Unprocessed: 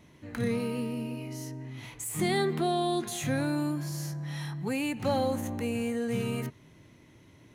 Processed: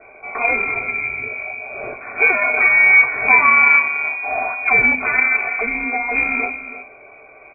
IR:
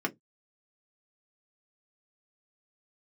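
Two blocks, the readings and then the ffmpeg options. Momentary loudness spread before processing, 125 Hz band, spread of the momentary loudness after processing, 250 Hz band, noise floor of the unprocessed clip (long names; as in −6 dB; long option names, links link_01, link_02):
11 LU, can't be measured, 18 LU, −3.0 dB, −57 dBFS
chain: -filter_complex "[0:a]equalizer=frequency=880:width=3.3:gain=-14.5,bandreject=frequency=80.86:width_type=h:width=4,bandreject=frequency=161.72:width_type=h:width=4,bandreject=frequency=242.58:width_type=h:width=4,bandreject=frequency=323.44:width_type=h:width=4,bandreject=frequency=404.3:width_type=h:width=4,bandreject=frequency=485.16:width_type=h:width=4,bandreject=frequency=566.02:width_type=h:width=4,bandreject=frequency=646.88:width_type=h:width=4,bandreject=frequency=727.74:width_type=h:width=4,bandreject=frequency=808.6:width_type=h:width=4,bandreject=frequency=889.46:width_type=h:width=4,bandreject=frequency=970.32:width_type=h:width=4,bandreject=frequency=1051.18:width_type=h:width=4,bandreject=frequency=1132.04:width_type=h:width=4,bandreject=frequency=1212.9:width_type=h:width=4,bandreject=frequency=1293.76:width_type=h:width=4,bandreject=frequency=1374.62:width_type=h:width=4,bandreject=frequency=1455.48:width_type=h:width=4,bandreject=frequency=1536.34:width_type=h:width=4,bandreject=frequency=1617.2:width_type=h:width=4,bandreject=frequency=1698.06:width_type=h:width=4,bandreject=frequency=1778.92:width_type=h:width=4,bandreject=frequency=1859.78:width_type=h:width=4,bandreject=frequency=1940.64:width_type=h:width=4,bandreject=frequency=2021.5:width_type=h:width=4,bandreject=frequency=2102.36:width_type=h:width=4,bandreject=frequency=2183.22:width_type=h:width=4,bandreject=frequency=2264.08:width_type=h:width=4,bandreject=frequency=2344.94:width_type=h:width=4,bandreject=frequency=2425.8:width_type=h:width=4,bandreject=frequency=2506.66:width_type=h:width=4,bandreject=frequency=2587.52:width_type=h:width=4,bandreject=frequency=2668.38:width_type=h:width=4,bandreject=frequency=2749.24:width_type=h:width=4,acrossover=split=210|1100[link_01][link_02][link_03];[link_03]aeval=exprs='0.0631*sin(PI/2*5.01*val(0)/0.0631)':channel_layout=same[link_04];[link_01][link_02][link_04]amix=inputs=3:normalize=0,asplit=2[link_05][link_06];[link_06]adelay=326.5,volume=-10dB,highshelf=frequency=4000:gain=-7.35[link_07];[link_05][link_07]amix=inputs=2:normalize=0[link_08];[1:a]atrim=start_sample=2205[link_09];[link_08][link_09]afir=irnorm=-1:irlink=0,aeval=exprs='0.531*(cos(1*acos(clip(val(0)/0.531,-1,1)))-cos(1*PI/2))+0.0266*(cos(3*acos(clip(val(0)/0.531,-1,1)))-cos(3*PI/2))+0.0188*(cos(7*acos(clip(val(0)/0.531,-1,1)))-cos(7*PI/2))':channel_layout=same,lowpass=frequency=2200:width_type=q:width=0.5098,lowpass=frequency=2200:width_type=q:width=0.6013,lowpass=frequency=2200:width_type=q:width=0.9,lowpass=frequency=2200:width_type=q:width=2.563,afreqshift=-2600,volume=5dB"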